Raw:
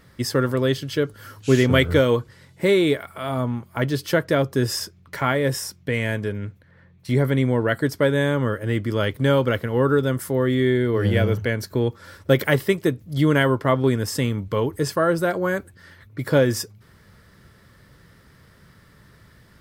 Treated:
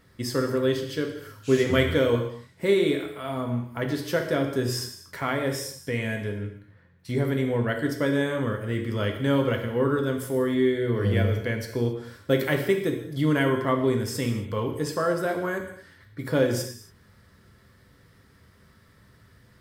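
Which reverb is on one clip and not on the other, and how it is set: gated-style reverb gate 300 ms falling, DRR 3 dB; trim -6.5 dB

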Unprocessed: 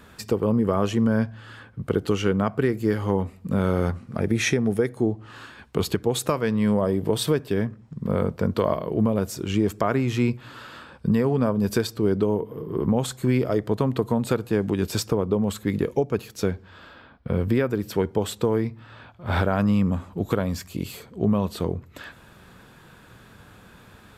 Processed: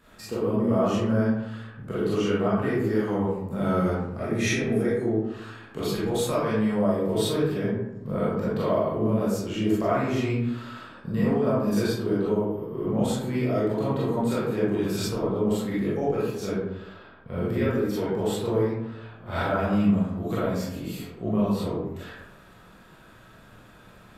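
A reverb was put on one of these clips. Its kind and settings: algorithmic reverb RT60 0.96 s, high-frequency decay 0.45×, pre-delay 0 ms, DRR -10 dB; trim -11.5 dB

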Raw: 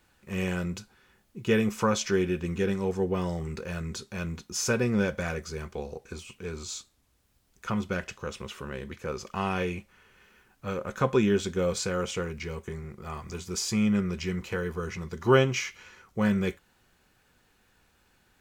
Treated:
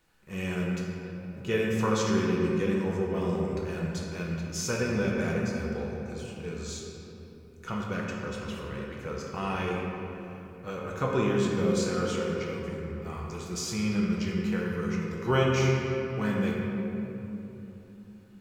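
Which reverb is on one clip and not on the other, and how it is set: simulated room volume 170 m³, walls hard, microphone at 0.61 m; trim -5 dB

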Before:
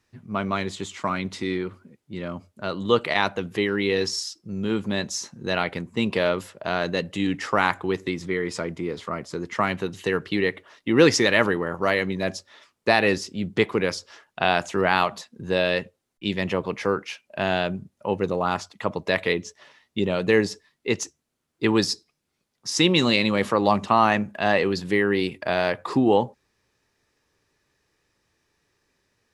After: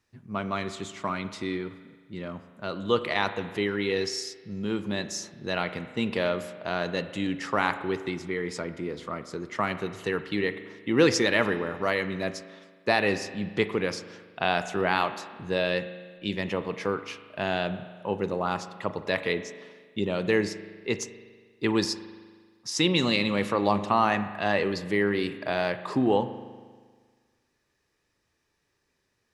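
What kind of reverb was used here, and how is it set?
spring tank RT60 1.6 s, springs 39 ms, chirp 25 ms, DRR 11 dB; trim -4.5 dB

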